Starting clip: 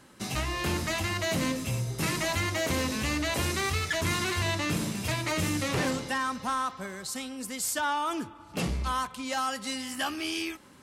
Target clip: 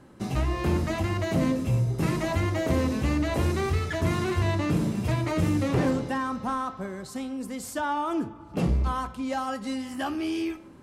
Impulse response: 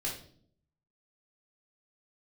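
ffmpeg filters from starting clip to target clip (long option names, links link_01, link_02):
-filter_complex "[0:a]tiltshelf=frequency=1300:gain=8,bandreject=frequency=217.2:width_type=h:width=4,bandreject=frequency=434.4:width_type=h:width=4,bandreject=frequency=651.6:width_type=h:width=4,bandreject=frequency=868.8:width_type=h:width=4,bandreject=frequency=1086:width_type=h:width=4,bandreject=frequency=1303.2:width_type=h:width=4,bandreject=frequency=1520.4:width_type=h:width=4,bandreject=frequency=1737.6:width_type=h:width=4,bandreject=frequency=1954.8:width_type=h:width=4,bandreject=frequency=2172:width_type=h:width=4,bandreject=frequency=2389.2:width_type=h:width=4,bandreject=frequency=2606.4:width_type=h:width=4,bandreject=frequency=2823.6:width_type=h:width=4,bandreject=frequency=3040.8:width_type=h:width=4,bandreject=frequency=3258:width_type=h:width=4,bandreject=frequency=3475.2:width_type=h:width=4,bandreject=frequency=3692.4:width_type=h:width=4,bandreject=frequency=3909.6:width_type=h:width=4,bandreject=frequency=4126.8:width_type=h:width=4,bandreject=frequency=4344:width_type=h:width=4,bandreject=frequency=4561.2:width_type=h:width=4,bandreject=frequency=4778.4:width_type=h:width=4,bandreject=frequency=4995.6:width_type=h:width=4,bandreject=frequency=5212.8:width_type=h:width=4,bandreject=frequency=5430:width_type=h:width=4,bandreject=frequency=5647.2:width_type=h:width=4,bandreject=frequency=5864.4:width_type=h:width=4,bandreject=frequency=6081.6:width_type=h:width=4,bandreject=frequency=6298.8:width_type=h:width=4,bandreject=frequency=6516:width_type=h:width=4,bandreject=frequency=6733.2:width_type=h:width=4,bandreject=frequency=6950.4:width_type=h:width=4,bandreject=frequency=7167.6:width_type=h:width=4,asplit=2[link_01][link_02];[1:a]atrim=start_sample=2205[link_03];[link_02][link_03]afir=irnorm=-1:irlink=0,volume=-16.5dB[link_04];[link_01][link_04]amix=inputs=2:normalize=0,volume=-2dB"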